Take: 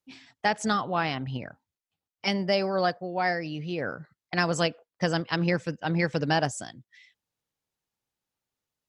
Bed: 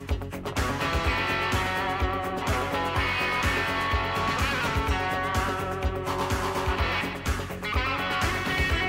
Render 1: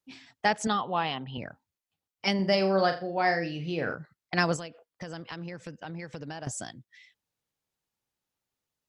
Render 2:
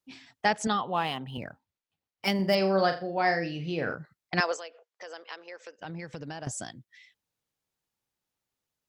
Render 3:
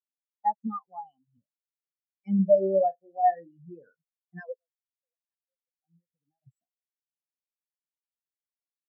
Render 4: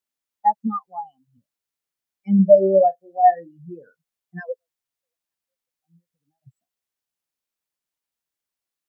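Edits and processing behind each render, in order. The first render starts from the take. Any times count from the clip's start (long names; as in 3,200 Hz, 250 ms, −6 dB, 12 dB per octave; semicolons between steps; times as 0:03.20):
0:00.67–0:01.38: loudspeaker in its box 190–3,900 Hz, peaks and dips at 300 Hz −7 dB, 620 Hz −4 dB, 900 Hz +3 dB, 1,500 Hz −7 dB, 2,200 Hz −6 dB, 3,200 Hz +5 dB; 0:02.35–0:03.95: flutter between parallel walls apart 7.1 metres, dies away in 0.32 s; 0:04.56–0:06.47: downward compressor, threshold −36 dBFS
0:00.94–0:02.55: running median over 5 samples; 0:04.40–0:05.79: elliptic band-pass filter 440–6,900 Hz, stop band 50 dB
leveller curve on the samples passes 2; every bin expanded away from the loudest bin 4 to 1
level +8 dB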